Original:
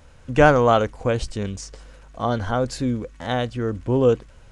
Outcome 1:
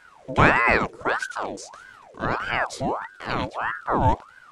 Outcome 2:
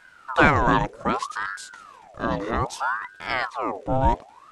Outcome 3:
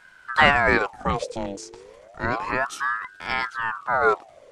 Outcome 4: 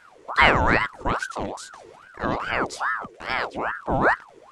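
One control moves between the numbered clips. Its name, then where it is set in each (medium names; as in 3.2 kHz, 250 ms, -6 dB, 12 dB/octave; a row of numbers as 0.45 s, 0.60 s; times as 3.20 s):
ring modulator with a swept carrier, at: 1.6 Hz, 0.63 Hz, 0.31 Hz, 2.4 Hz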